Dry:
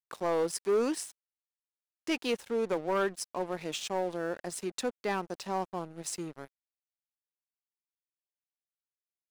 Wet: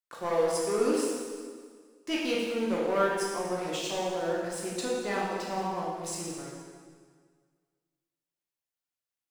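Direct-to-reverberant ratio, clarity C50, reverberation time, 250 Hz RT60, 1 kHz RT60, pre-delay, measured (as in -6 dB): -5.5 dB, -0.5 dB, 1.7 s, 1.9 s, 1.7 s, 3 ms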